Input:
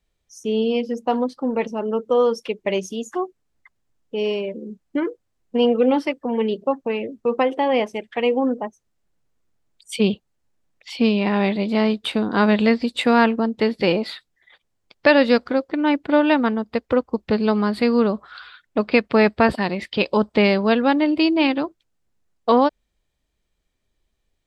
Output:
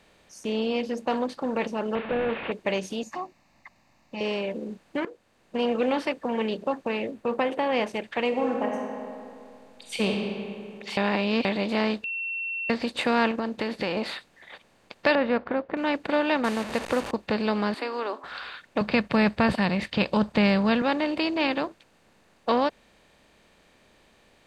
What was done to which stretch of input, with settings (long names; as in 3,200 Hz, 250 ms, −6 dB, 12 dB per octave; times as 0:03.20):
0:01.95–0:02.52: linear delta modulator 16 kbit/s, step −32.5 dBFS
0:03.03–0:04.21: phaser with its sweep stopped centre 2,200 Hz, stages 8
0:05.05–0:05.78: fade in linear, from −17.5 dB
0:07.11–0:07.73: parametric band 5,400 Hz −7.5 dB 1.3 octaves
0:08.28–0:10.08: thrown reverb, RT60 1.5 s, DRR 3.5 dB
0:10.97–0:11.45: reverse
0:12.04–0:12.70: beep over 2,710 Hz −20.5 dBFS
0:13.31–0:13.97: downward compressor, threshold −21 dBFS
0:15.15–0:15.77: Bessel low-pass filter 1,400 Hz, order 4
0:16.44–0:17.11: linear delta modulator 64 kbit/s, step −31.5 dBFS
0:17.74–0:18.24: Chebyshev high-pass with heavy ripple 260 Hz, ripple 9 dB
0:18.81–0:20.82: low shelf with overshoot 240 Hz +11.5 dB, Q 1.5
whole clip: compressor on every frequency bin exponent 0.6; low-shelf EQ 240 Hz −8.5 dB; level −8 dB